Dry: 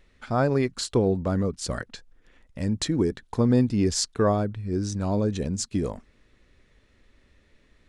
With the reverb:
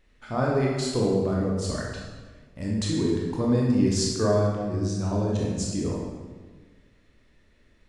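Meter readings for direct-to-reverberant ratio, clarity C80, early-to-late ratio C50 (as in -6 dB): -3.5 dB, 2.5 dB, 0.0 dB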